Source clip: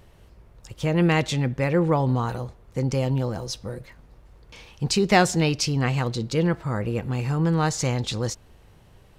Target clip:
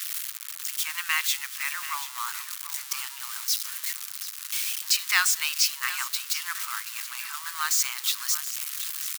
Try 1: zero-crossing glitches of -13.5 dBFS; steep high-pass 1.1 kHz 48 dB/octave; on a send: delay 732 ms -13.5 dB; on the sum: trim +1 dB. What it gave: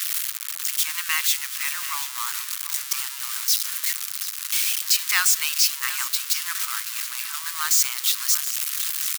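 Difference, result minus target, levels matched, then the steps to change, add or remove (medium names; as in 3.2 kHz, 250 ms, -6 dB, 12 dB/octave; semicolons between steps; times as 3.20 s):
zero-crossing glitches: distortion +6 dB
change: zero-crossing glitches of -20 dBFS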